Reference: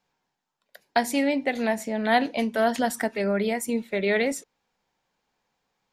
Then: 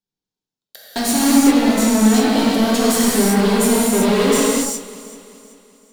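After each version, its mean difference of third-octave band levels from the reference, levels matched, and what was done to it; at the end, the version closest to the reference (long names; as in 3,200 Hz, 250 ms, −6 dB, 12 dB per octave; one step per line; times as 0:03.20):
12.0 dB: flat-topped bell 1,200 Hz −13 dB 2.5 octaves
leveller curve on the samples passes 5
delay that swaps between a low-pass and a high-pass 192 ms, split 1,500 Hz, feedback 65%, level −13.5 dB
reverb whose tail is shaped and stops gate 410 ms flat, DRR −7 dB
level −4 dB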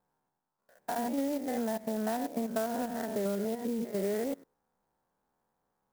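9.0 dB: spectrum averaged block by block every 100 ms
low-pass filter 1,500 Hz 24 dB per octave
downward compressor, threshold −29 dBFS, peak gain reduction 10 dB
converter with an unsteady clock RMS 0.055 ms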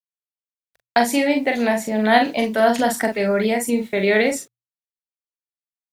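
3.0 dB: noise gate −35 dBFS, range −22 dB
bit reduction 10 bits
mains-hum notches 60/120 Hz
double-tracking delay 42 ms −5 dB
level +5 dB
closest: third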